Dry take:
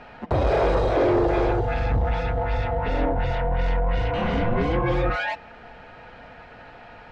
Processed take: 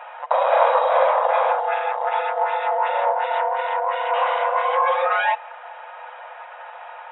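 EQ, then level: brick-wall FIR band-pass 480–3900 Hz; bell 1000 Hz +10.5 dB 0.65 oct; +3.0 dB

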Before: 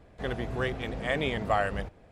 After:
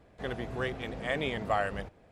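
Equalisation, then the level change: low shelf 77 Hz -6.5 dB; -2.5 dB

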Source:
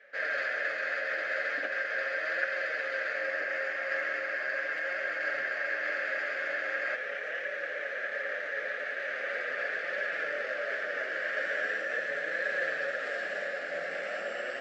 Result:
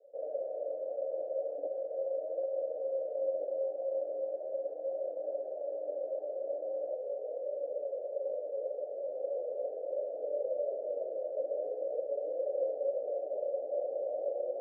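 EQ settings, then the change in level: Chebyshev band-pass 290–770 Hz, order 4; bell 510 Hz +14 dB 0.84 oct; -7.5 dB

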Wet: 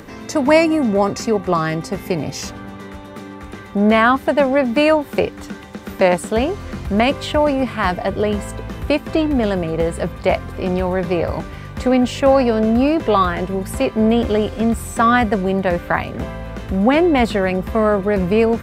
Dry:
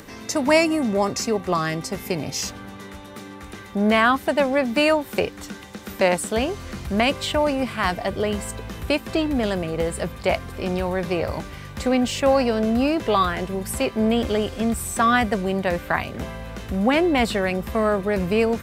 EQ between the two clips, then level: high shelf 2700 Hz -9 dB; +5.5 dB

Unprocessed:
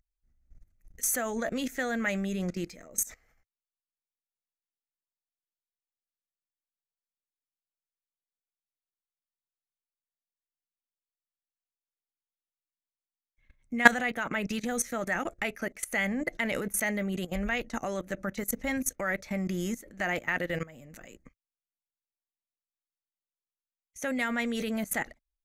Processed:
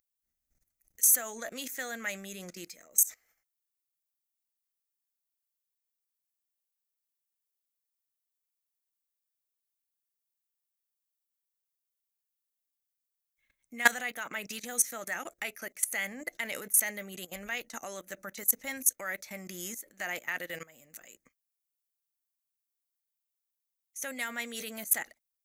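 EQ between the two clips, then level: RIAA curve recording; -6.5 dB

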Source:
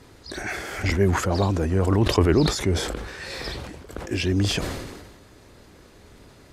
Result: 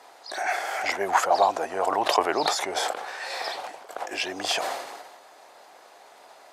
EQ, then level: resonant high-pass 740 Hz, resonance Q 4; 0.0 dB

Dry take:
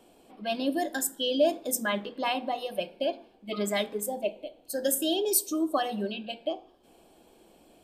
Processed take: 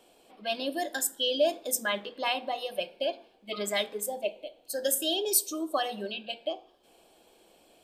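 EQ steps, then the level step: EQ curve 270 Hz 0 dB, 500 Hz +7 dB, 910 Hz +6 dB, 3700 Hz +11 dB, 11000 Hz +8 dB; -8.0 dB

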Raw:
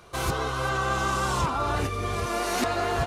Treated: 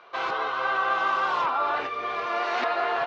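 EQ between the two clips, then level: BPF 680–4300 Hz; air absorption 220 m; +5.0 dB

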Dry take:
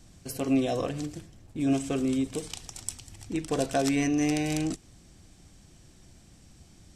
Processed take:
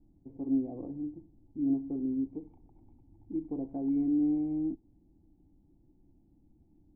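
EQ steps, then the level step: vocal tract filter u; tilt -3.5 dB/oct; low shelf 400 Hz -10.5 dB; 0.0 dB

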